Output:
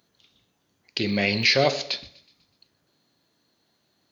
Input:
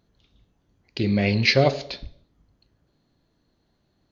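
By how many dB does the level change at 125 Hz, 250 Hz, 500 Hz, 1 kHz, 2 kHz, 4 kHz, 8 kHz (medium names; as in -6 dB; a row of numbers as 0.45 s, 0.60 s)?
-8.0 dB, -4.0 dB, -1.5 dB, -0.5 dB, +1.0 dB, +3.0 dB, no reading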